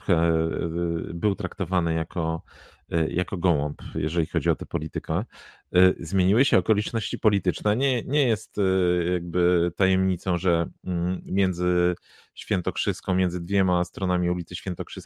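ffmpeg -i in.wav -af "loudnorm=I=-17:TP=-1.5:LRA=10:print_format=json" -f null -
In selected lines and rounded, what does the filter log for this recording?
"input_i" : "-25.0",
"input_tp" : "-3.5",
"input_lra" : "3.3",
"input_thresh" : "-35.2",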